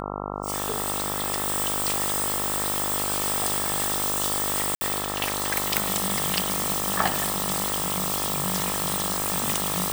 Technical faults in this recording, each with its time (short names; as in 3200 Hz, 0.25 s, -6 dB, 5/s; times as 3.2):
buzz 50 Hz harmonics 27 -32 dBFS
4.75–4.81 gap 60 ms